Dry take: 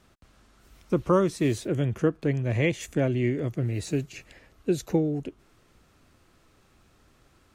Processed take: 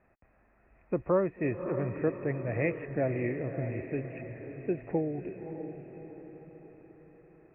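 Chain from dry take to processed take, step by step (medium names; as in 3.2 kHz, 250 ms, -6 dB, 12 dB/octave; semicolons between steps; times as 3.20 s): rippled Chebyshev low-pass 2.6 kHz, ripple 9 dB; on a send: echo that smears into a reverb 591 ms, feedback 50%, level -8.5 dB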